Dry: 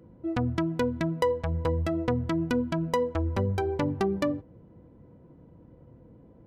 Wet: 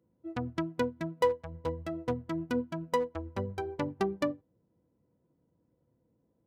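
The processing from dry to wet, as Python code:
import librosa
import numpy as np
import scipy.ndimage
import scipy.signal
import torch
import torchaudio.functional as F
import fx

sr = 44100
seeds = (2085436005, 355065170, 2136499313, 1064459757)

y = fx.highpass(x, sr, hz=110.0, slope=6)
y = fx.clip_asym(y, sr, top_db=-22.5, bottom_db=-17.0, at=(0.83, 3.1))
y = fx.upward_expand(y, sr, threshold_db=-36.0, expansion=2.5)
y = y * librosa.db_to_amplitude(1.5)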